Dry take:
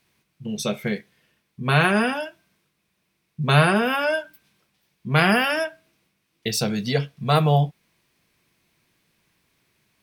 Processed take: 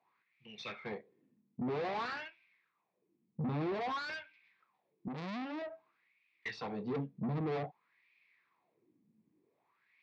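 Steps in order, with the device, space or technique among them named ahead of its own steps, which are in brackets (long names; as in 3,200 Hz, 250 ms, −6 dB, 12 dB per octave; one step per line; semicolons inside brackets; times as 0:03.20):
wah-wah guitar rig (LFO wah 0.52 Hz 220–2,400 Hz, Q 4.9; tube saturation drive 41 dB, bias 0.3; loudspeaker in its box 110–4,200 Hz, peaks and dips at 110 Hz +6 dB, 620 Hz −6 dB, 1,500 Hz −9 dB, 3,000 Hz −7 dB)
0:05.08–0:05.62: RIAA equalisation recording
level +8.5 dB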